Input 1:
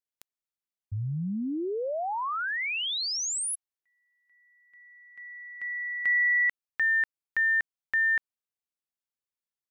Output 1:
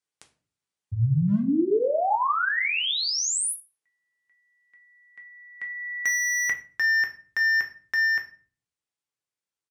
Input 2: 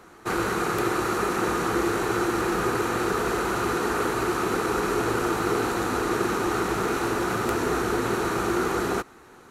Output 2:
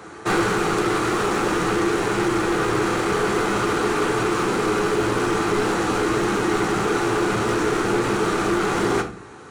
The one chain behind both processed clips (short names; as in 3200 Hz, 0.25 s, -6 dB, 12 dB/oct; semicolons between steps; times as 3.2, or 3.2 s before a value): HPF 63 Hz 24 dB/oct; dynamic EQ 210 Hz, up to +3 dB, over -45 dBFS, Q 2.4; downsampling 22050 Hz; hard clip -25.5 dBFS; shoebox room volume 33 m³, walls mixed, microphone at 0.4 m; vocal rider within 5 dB 0.5 s; gain +4.5 dB